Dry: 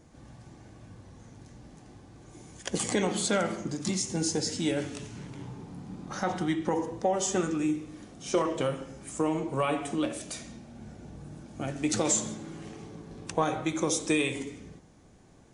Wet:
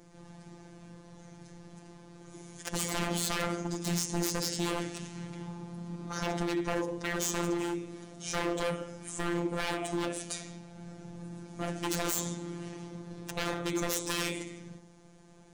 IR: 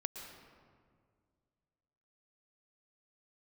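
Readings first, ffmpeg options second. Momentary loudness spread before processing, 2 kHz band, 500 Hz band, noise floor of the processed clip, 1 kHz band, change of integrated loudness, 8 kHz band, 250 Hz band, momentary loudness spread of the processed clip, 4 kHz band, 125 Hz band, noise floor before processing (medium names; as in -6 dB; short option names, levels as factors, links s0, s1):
18 LU, -0.5 dB, -5.0 dB, -55 dBFS, -4.0 dB, -4.0 dB, -3.5 dB, -4.0 dB, 20 LU, -0.5 dB, -1.0 dB, -56 dBFS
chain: -af "aeval=exprs='0.0422*(abs(mod(val(0)/0.0422+3,4)-2)-1)':c=same,bandreject=f=176.2:t=h:w=4,bandreject=f=352.4:t=h:w=4,afftfilt=real='hypot(re,im)*cos(PI*b)':imag='0':win_size=1024:overlap=0.75,volume=1.58"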